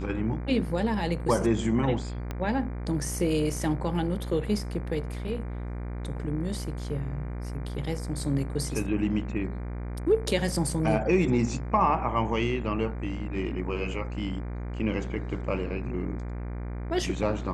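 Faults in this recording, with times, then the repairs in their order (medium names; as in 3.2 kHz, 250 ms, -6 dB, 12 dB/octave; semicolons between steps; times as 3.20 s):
buzz 60 Hz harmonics 40 -34 dBFS
2.31 s: pop -19 dBFS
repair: de-click; de-hum 60 Hz, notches 40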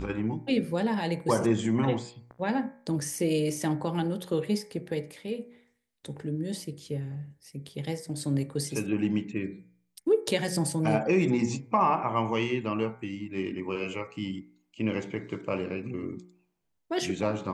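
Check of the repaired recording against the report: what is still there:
2.31 s: pop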